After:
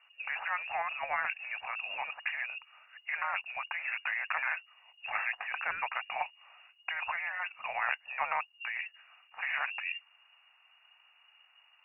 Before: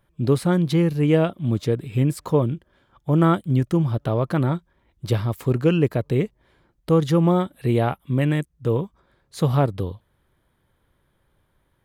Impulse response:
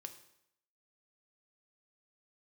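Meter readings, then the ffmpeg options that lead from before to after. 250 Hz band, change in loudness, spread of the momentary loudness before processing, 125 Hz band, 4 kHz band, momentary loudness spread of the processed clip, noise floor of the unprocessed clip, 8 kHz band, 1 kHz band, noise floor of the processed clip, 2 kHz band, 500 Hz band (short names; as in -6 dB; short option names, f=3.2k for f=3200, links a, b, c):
under -40 dB, -13.0 dB, 8 LU, under -40 dB, -6.5 dB, 6 LU, -68 dBFS, n/a, -5.5 dB, -66 dBFS, +5.0 dB, -25.5 dB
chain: -af "afftfilt=real='re*lt(hypot(re,im),0.141)':imag='im*lt(hypot(re,im),0.141)':win_size=1024:overlap=0.75,lowpass=f=2.5k:t=q:w=0.5098,lowpass=f=2.5k:t=q:w=0.6013,lowpass=f=2.5k:t=q:w=0.9,lowpass=f=2.5k:t=q:w=2.563,afreqshift=-2900,lowshelf=f=530:t=q:w=3:g=-13.5,volume=1.5dB"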